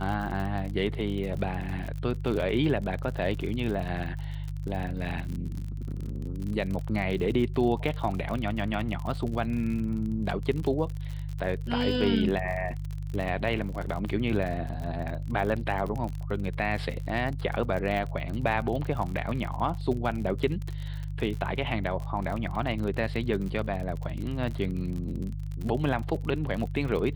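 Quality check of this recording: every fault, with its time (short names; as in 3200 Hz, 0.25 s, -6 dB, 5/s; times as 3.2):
crackle 48/s -33 dBFS
hum 50 Hz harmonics 3 -34 dBFS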